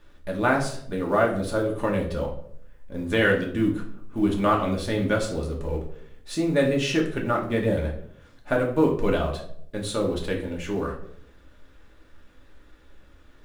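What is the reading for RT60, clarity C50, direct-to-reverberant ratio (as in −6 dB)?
0.65 s, 8.0 dB, −1.5 dB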